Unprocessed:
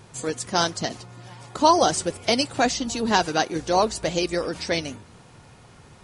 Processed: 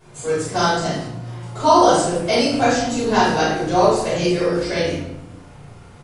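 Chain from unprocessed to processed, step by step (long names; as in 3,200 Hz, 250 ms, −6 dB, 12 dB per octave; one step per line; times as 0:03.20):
parametric band 4,800 Hz −3 dB 1.6 octaves
double-tracking delay 34 ms −5 dB
convolution reverb RT60 0.85 s, pre-delay 5 ms, DRR −11 dB
level −10 dB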